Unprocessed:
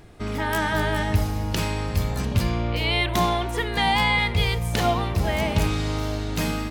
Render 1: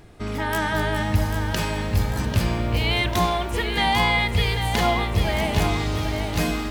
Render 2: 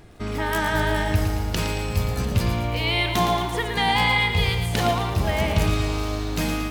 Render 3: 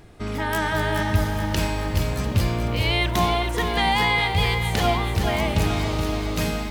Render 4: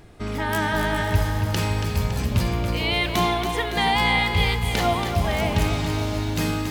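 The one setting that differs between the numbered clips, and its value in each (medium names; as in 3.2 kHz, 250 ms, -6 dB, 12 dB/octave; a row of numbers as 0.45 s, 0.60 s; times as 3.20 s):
bit-crushed delay, time: 794 ms, 113 ms, 427 ms, 280 ms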